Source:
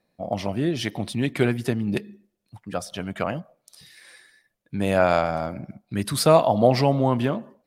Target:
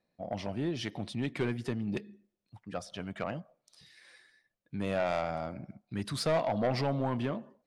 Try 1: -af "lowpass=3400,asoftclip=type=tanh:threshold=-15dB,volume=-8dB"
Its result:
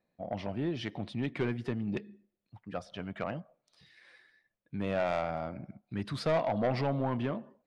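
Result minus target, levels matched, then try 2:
8,000 Hz band −10.0 dB
-af "lowpass=7000,asoftclip=type=tanh:threshold=-15dB,volume=-8dB"

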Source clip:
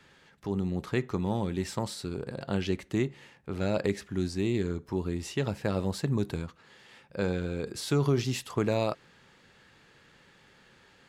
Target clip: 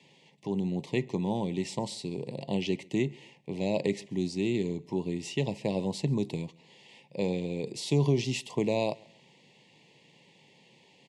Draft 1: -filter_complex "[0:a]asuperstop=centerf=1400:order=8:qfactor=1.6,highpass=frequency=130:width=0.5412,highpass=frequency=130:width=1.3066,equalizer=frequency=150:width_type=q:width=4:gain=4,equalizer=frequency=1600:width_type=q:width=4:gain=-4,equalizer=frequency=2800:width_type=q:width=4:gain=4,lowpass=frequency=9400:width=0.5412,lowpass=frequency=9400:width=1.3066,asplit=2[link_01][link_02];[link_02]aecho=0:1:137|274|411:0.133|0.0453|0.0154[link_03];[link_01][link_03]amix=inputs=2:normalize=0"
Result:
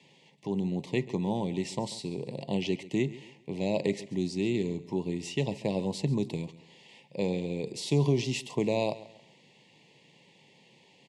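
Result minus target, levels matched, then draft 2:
echo-to-direct +8.5 dB
-filter_complex "[0:a]asuperstop=centerf=1400:order=8:qfactor=1.6,highpass=frequency=130:width=0.5412,highpass=frequency=130:width=1.3066,equalizer=frequency=150:width_type=q:width=4:gain=4,equalizer=frequency=1600:width_type=q:width=4:gain=-4,equalizer=frequency=2800:width_type=q:width=4:gain=4,lowpass=frequency=9400:width=0.5412,lowpass=frequency=9400:width=1.3066,asplit=2[link_01][link_02];[link_02]aecho=0:1:137|274:0.0501|0.017[link_03];[link_01][link_03]amix=inputs=2:normalize=0"

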